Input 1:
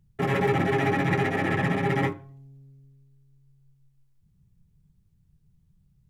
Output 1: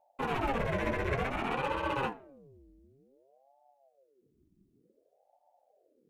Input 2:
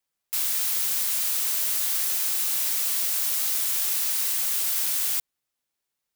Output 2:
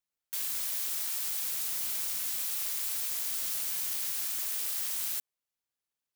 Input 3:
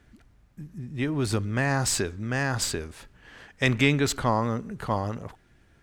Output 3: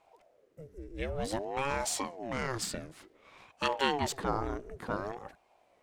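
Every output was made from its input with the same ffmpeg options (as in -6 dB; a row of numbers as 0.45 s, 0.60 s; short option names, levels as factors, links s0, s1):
-af "aeval=exprs='val(0)*sin(2*PI*460*n/s+460*0.6/0.55*sin(2*PI*0.55*n/s))':c=same,volume=0.562"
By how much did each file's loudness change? -8.0 LU, -8.0 LU, -8.0 LU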